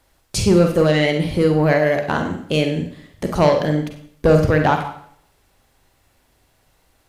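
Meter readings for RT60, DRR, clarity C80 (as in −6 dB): 0.65 s, 4.0 dB, 11.0 dB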